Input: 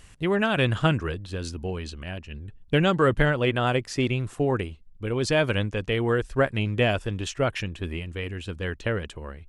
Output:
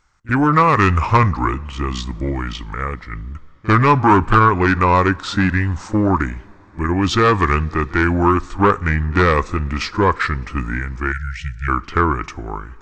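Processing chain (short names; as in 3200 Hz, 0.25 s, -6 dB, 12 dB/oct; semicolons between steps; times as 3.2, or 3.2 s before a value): gate with hold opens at -36 dBFS; in parallel at -3.5 dB: sine folder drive 9 dB, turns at -7 dBFS; on the sum: band shelf 1600 Hz +8 dB 1.1 oct; on a send: reverse echo 33 ms -21.5 dB; on the sum: two-slope reverb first 0.29 s, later 3.8 s, from -18 dB, DRR 18 dB; spectral delete 8.24–8.66, 230–1800 Hz; speed mistake 45 rpm record played at 33 rpm; gain -3.5 dB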